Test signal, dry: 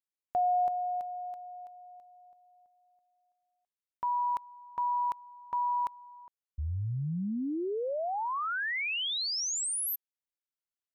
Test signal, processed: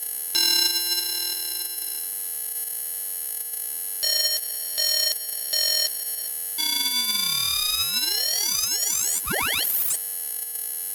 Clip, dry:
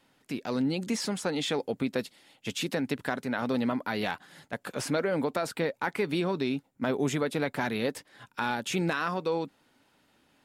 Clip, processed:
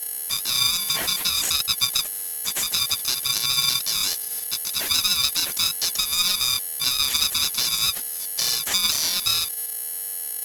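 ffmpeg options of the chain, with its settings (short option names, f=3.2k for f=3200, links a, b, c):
-filter_complex "[0:a]afftfilt=real='real(if(lt(b,736),b+184*(1-2*mod(floor(b/184),2)),b),0)':imag='imag(if(lt(b,736),b+184*(1-2*mod(floor(b/184),2)),b),0)':win_size=2048:overlap=0.75,highpass=f=720:w=0.5412,highpass=f=720:w=1.3066,agate=range=-45dB:threshold=-55dB:ratio=16:release=325:detection=peak,asplit=2[a][b];[b]acompressor=threshold=-39dB:ratio=6:attack=8.6:release=159:knee=1:detection=rms,volume=0dB[c];[a][c]amix=inputs=2:normalize=0,aeval=exprs='val(0)+0.0251*sin(2*PI*11000*n/s)':c=same,acontrast=68,aphaser=in_gain=1:out_gain=1:delay=5:decay=0.43:speed=0.57:type=sinusoidal,aeval=exprs='val(0)*sgn(sin(2*PI*620*n/s))':c=same,volume=-3dB"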